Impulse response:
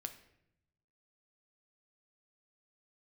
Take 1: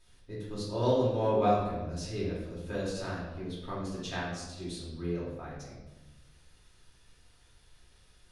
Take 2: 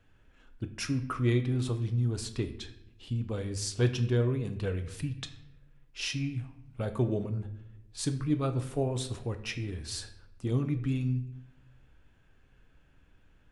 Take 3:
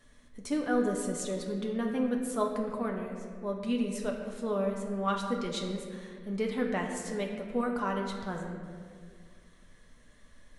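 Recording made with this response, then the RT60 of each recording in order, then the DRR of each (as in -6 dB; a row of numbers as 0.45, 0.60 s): 2; 1.1, 0.80, 2.0 s; -7.5, 7.0, 0.0 dB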